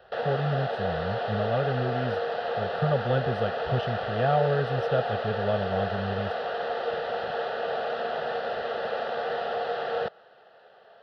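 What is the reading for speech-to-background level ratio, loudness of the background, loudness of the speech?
0.5 dB, -30.5 LUFS, -30.0 LUFS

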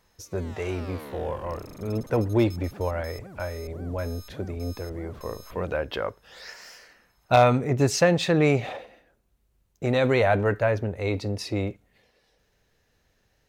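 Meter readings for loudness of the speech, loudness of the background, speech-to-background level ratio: -26.0 LUFS, -45.0 LUFS, 19.0 dB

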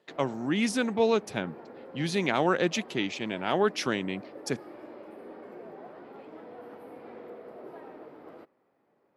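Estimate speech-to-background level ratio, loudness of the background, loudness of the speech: 17.5 dB, -46.5 LUFS, -29.0 LUFS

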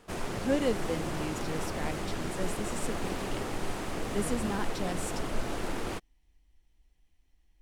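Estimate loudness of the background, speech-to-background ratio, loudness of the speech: -36.0 LUFS, -0.5 dB, -36.5 LUFS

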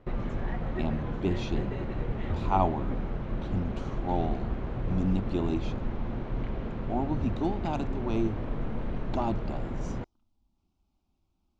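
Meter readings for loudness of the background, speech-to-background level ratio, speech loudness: -35.0 LUFS, 2.0 dB, -33.0 LUFS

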